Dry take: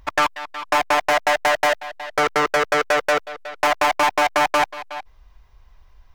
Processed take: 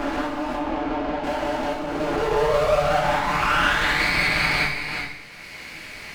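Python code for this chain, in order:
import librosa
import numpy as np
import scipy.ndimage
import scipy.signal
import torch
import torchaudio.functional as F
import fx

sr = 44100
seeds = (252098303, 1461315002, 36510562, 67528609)

p1 = fx.spec_swells(x, sr, rise_s=2.78)
p2 = scipy.signal.sosfilt(scipy.signal.butter(2, 88.0, 'highpass', fs=sr, output='sos'), p1)
p3 = fx.quant_dither(p2, sr, seeds[0], bits=6, dither='triangular')
p4 = p2 + (p3 * 10.0 ** (-8.0 / 20.0))
p5 = fx.filter_sweep_bandpass(p4, sr, from_hz=270.0, to_hz=2200.0, start_s=1.86, end_s=4.05, q=5.8)
p6 = fx.vibrato(p5, sr, rate_hz=10.0, depth_cents=58.0)
p7 = np.maximum(p6, 0.0)
p8 = fx.spacing_loss(p7, sr, db_at_10k=24, at=(0.55, 1.24))
p9 = fx.rev_double_slope(p8, sr, seeds[1], early_s=0.57, late_s=1.7, knee_db=-25, drr_db=-6.5)
y = fx.band_squash(p9, sr, depth_pct=70)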